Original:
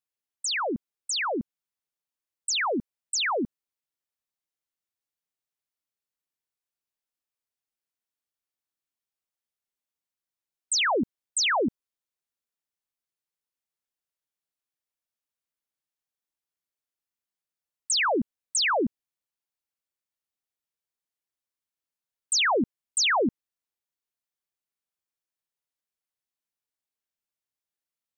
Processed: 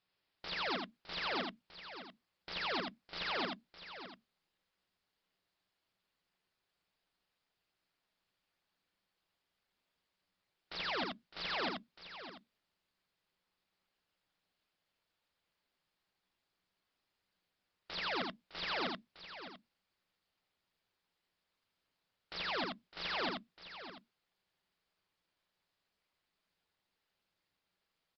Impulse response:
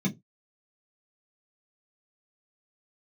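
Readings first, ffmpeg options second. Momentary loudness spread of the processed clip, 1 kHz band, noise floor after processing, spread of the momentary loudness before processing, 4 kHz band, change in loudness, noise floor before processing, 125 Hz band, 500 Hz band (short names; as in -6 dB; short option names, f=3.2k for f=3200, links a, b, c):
15 LU, -11.5 dB, under -85 dBFS, 10 LU, -11.0 dB, -14.0 dB, under -85 dBFS, -9.0 dB, -13.5 dB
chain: -filter_complex "[0:a]alimiter=level_in=4.5dB:limit=-24dB:level=0:latency=1:release=26,volume=-4.5dB,aeval=exprs='(mod(133*val(0)+1,2)-1)/133':c=same,aecho=1:1:609:0.251,asplit=2[a][b];[1:a]atrim=start_sample=2205[c];[b][c]afir=irnorm=-1:irlink=0,volume=-27dB[d];[a][d]amix=inputs=2:normalize=0,aresample=11025,aresample=44100,asplit=2[e][f];[f]aecho=0:1:81:0.668[g];[e][g]amix=inputs=2:normalize=0,volume=12dB" -ar 48000 -c:a libopus -b:a 48k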